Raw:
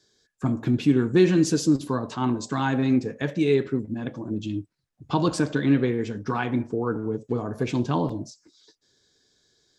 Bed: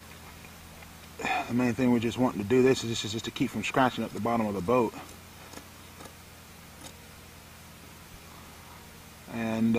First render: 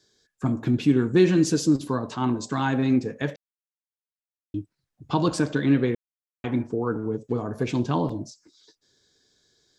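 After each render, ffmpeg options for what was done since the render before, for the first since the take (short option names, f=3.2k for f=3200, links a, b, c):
-filter_complex "[0:a]asplit=5[a][b][c][d][e];[a]atrim=end=3.36,asetpts=PTS-STARTPTS,afade=t=out:st=3.356:d=0.004:c=hsin[f];[b]atrim=start=3.36:end=4.54,asetpts=PTS-STARTPTS,volume=0[g];[c]atrim=start=4.54:end=5.95,asetpts=PTS-STARTPTS,afade=t=in:d=0.004:c=hsin,afade=t=out:st=1.406:d=0.004:c=hsin[h];[d]atrim=start=5.95:end=6.44,asetpts=PTS-STARTPTS,volume=0[i];[e]atrim=start=6.44,asetpts=PTS-STARTPTS,afade=t=in:d=0.004:c=hsin[j];[f][g][h][i][j]concat=n=5:v=0:a=1"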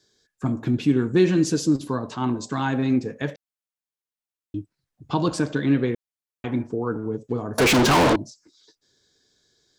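-filter_complex "[0:a]asettb=1/sr,asplit=3[a][b][c];[a]atrim=end=7.584[d];[b]atrim=start=7.58:end=8.16,asetpts=PTS-STARTPTS,afade=t=in:d=0.004:c=qsin,afade=t=out:st=0.576:d=0.004:c=qsin,asplit=2[e][f];[f]highpass=f=720:p=1,volume=40dB,asoftclip=type=tanh:threshold=-10.5dB[g];[e][g]amix=inputs=2:normalize=0,lowpass=f=7.5k:p=1,volume=-6dB[h];[c]atrim=start=8.156[i];[d][h]acrossfade=d=0.004:c1=hsin:c2=qsin[j];[j][i]acrossfade=d=0.004:c1=qsin:c2=hsin"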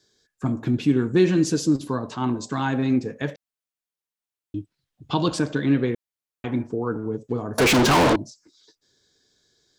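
-filter_complex "[0:a]asettb=1/sr,asplit=3[a][b][c];[a]atrim=end=4.574[d];[b]atrim=start=4.57:end=5.39,asetpts=PTS-STARTPTS,afade=t=in:d=0.004:c=qsin,afade=t=out:st=0.816:d=0.004:c=qsin,equalizer=f=3.3k:t=o:w=0.77:g=7[e];[c]atrim=start=5.386[f];[d][e]acrossfade=d=0.004:c1=hsin:c2=qsin[g];[g][f]acrossfade=d=0.004:c1=qsin:c2=hsin"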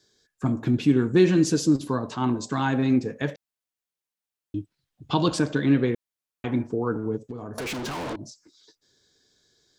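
-filter_complex "[0:a]asplit=3[a][b][c];[a]afade=t=out:st=7.17:d=0.02[d];[b]acompressor=threshold=-31dB:ratio=8:attack=3.2:release=140:knee=1:detection=peak,afade=t=in:st=7.17:d=0.02,afade=t=out:st=8.22:d=0.02[e];[c]afade=t=in:st=8.22:d=0.02[f];[d][e][f]amix=inputs=3:normalize=0"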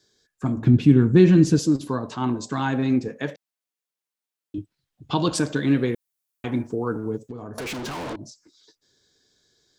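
-filter_complex "[0:a]asettb=1/sr,asplit=3[a][b][c];[a]atrim=end=0.574[d];[b]atrim=start=0.57:end=1.59,asetpts=PTS-STARTPTS,afade=t=in:d=0.004:c=qsin,afade=t=out:st=1.016:d=0.004:c=qsin,bass=f=250:g=10,treble=f=4k:g=-4[e];[c]atrim=start=1.586[f];[d][e]acrossfade=d=0.004:c1=hsin:c2=qsin[g];[g][f]acrossfade=d=0.004:c1=qsin:c2=hsin,asettb=1/sr,asplit=3[h][i][j];[h]atrim=end=3.084[k];[i]atrim=start=3.08:end=4.58,asetpts=PTS-STARTPTS,afade=t=in:d=0.004:c=qsin,afade=t=out:st=1.496:d=0.004:c=qsin,highpass=160[l];[j]atrim=start=4.576[m];[k][l]acrossfade=d=0.004:c1=hsin:c2=qsin[n];[n][m]acrossfade=d=0.004:c1=qsin:c2=hsin,asettb=1/sr,asplit=3[o][p][q];[o]atrim=end=5.354[r];[p]atrim=start=5.35:end=7.29,asetpts=PTS-STARTPTS,afade=t=in:d=0.004:c=qsin,afade=t=out:st=1.936:d=0.004:c=qsin,highshelf=f=6.6k:g=11.5[s];[q]atrim=start=7.286[t];[r][s]acrossfade=d=0.004:c1=hsin:c2=qsin[u];[u][t]acrossfade=d=0.004:c1=qsin:c2=hsin"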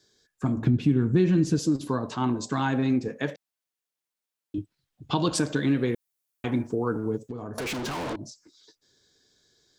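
-af "acompressor=threshold=-21dB:ratio=2.5"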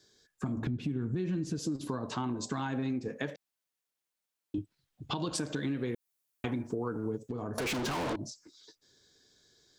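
-af "alimiter=limit=-17.5dB:level=0:latency=1:release=156,acompressor=threshold=-31dB:ratio=4"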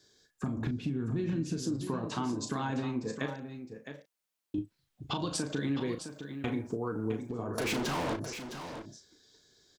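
-filter_complex "[0:a]asplit=2[a][b];[b]adelay=36,volume=-8.5dB[c];[a][c]amix=inputs=2:normalize=0,aecho=1:1:661:0.335"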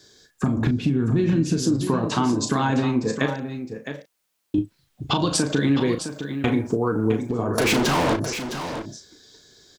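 -af "volume=12dB"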